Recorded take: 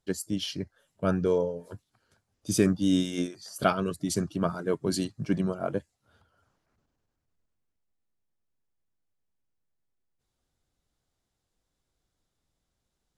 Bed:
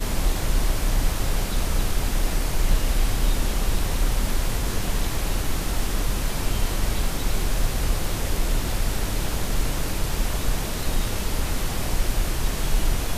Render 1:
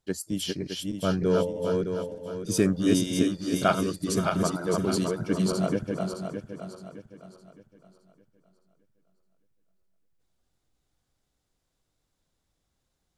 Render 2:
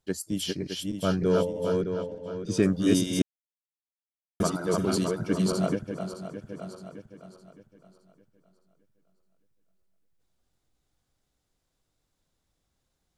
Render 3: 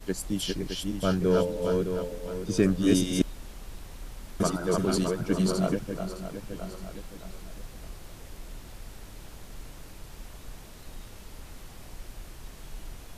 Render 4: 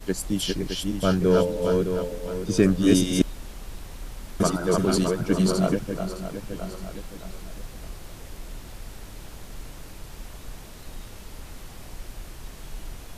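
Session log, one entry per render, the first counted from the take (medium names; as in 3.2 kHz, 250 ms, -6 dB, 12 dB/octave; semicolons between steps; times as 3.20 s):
backward echo that repeats 307 ms, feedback 60%, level -2.5 dB
1.82–2.63 s: distance through air 91 m; 3.22–4.40 s: mute; 5.75–6.42 s: gain -4 dB
add bed -19.5 dB
trim +4 dB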